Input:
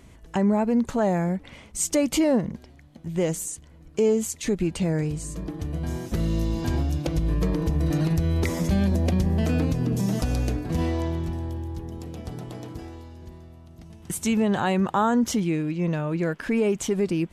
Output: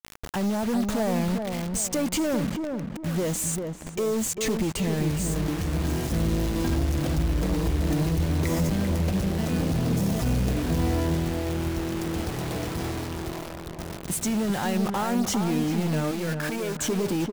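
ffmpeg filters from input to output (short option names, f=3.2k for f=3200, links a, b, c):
-filter_complex "[0:a]asplit=2[a][b];[b]acompressor=threshold=-35dB:ratio=20,volume=-1dB[c];[a][c]amix=inputs=2:normalize=0,alimiter=limit=-17dB:level=0:latency=1:release=39,acrusher=bits=5:mix=0:aa=0.000001,asoftclip=type=tanh:threshold=-24dB,asettb=1/sr,asplit=3[d][e][f];[d]atrim=end=16.114[g];[e]atrim=start=16.11:end=16.76,asetpts=PTS-STARTPTS,afade=t=in:d=0.004:c=qsin,afade=t=out:st=0.646:d=0.004:c=qsin,lowshelf=f=390:g=-10.5[h];[f]atrim=start=16.756[i];[g][h]acrossfade=d=0.004:c1=hsin:c2=qsin[j];[j][i]acrossfade=d=0.004:c1=qsin:c2=hsin,asplit=2[k][l];[l]adelay=394,lowpass=f=1.3k:p=1,volume=-4.5dB,asplit=2[m][n];[n]adelay=394,lowpass=f=1.3k:p=1,volume=0.39,asplit=2[o][p];[p]adelay=394,lowpass=f=1.3k:p=1,volume=0.39,asplit=2[q][r];[r]adelay=394,lowpass=f=1.3k:p=1,volume=0.39,asplit=2[s][t];[t]adelay=394,lowpass=f=1.3k:p=1,volume=0.39[u];[k][m][o][q][s][u]amix=inputs=6:normalize=0,volume=2.5dB"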